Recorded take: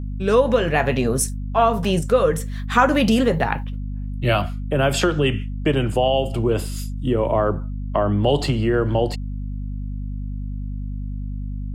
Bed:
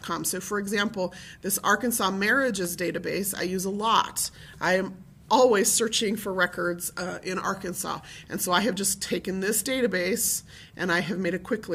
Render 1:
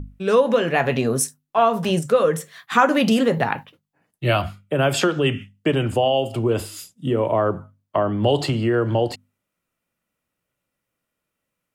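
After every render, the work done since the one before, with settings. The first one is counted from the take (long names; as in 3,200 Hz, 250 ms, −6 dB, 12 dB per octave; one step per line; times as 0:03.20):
mains-hum notches 50/100/150/200/250 Hz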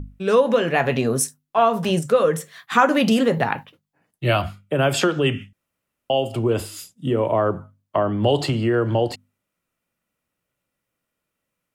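0:05.53–0:06.10: fill with room tone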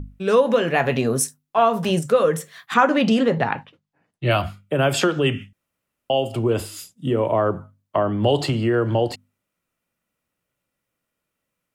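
0:02.74–0:04.31: high-frequency loss of the air 76 metres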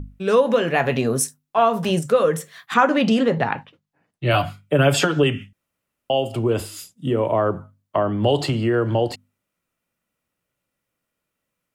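0:04.33–0:05.24: comb filter 6.9 ms, depth 79%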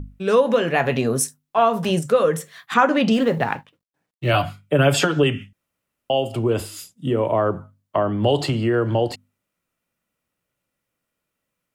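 0:03.13–0:04.31: mu-law and A-law mismatch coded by A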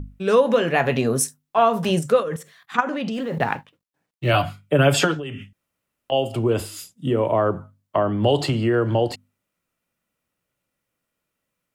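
0:02.20–0:03.40: output level in coarse steps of 13 dB
0:05.14–0:06.12: downward compressor, threshold −28 dBFS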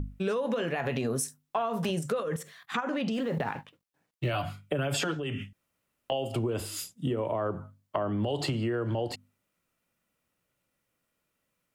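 brickwall limiter −12.5 dBFS, peak gain reduction 8.5 dB
downward compressor, threshold −27 dBFS, peak gain reduction 10 dB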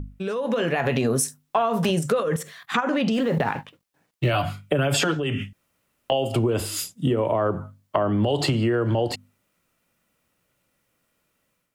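automatic gain control gain up to 8 dB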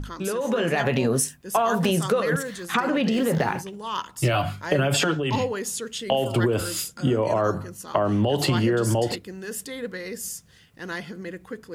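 mix in bed −8 dB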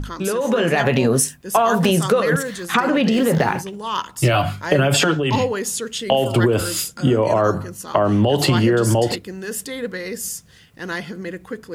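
level +5.5 dB
brickwall limiter −2 dBFS, peak gain reduction 0.5 dB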